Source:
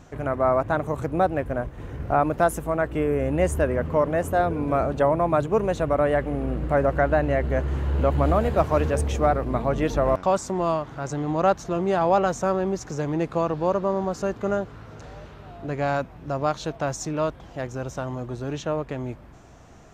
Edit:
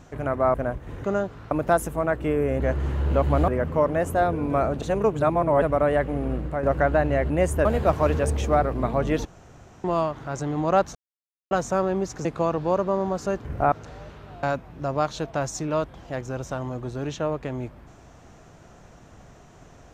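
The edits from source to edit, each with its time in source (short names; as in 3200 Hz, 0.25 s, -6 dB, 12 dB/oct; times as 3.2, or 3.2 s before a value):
0.54–1.45 cut
1.95–2.22 swap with 14.41–14.88
3.31–3.66 swap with 7.48–8.36
5–5.8 reverse
6.52–6.81 fade out, to -9.5 dB
9.96–10.55 room tone
11.66–12.22 mute
12.96–13.21 cut
15.59–15.89 cut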